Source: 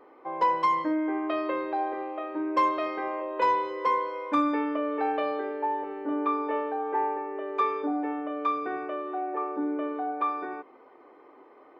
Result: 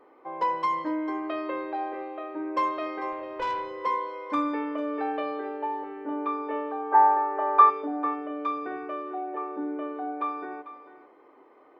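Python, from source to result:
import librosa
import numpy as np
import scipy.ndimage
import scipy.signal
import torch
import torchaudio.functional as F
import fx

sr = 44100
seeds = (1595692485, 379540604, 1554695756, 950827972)

y = fx.band_shelf(x, sr, hz=1000.0, db=13.0, octaves=1.7, at=(6.91, 7.69), fade=0.02)
y = y + 10.0 ** (-14.0 / 20.0) * np.pad(y, (int(446 * sr / 1000.0), 0))[:len(y)]
y = fx.tube_stage(y, sr, drive_db=22.0, bias=0.25, at=(3.12, 3.83))
y = y * 10.0 ** (-2.5 / 20.0)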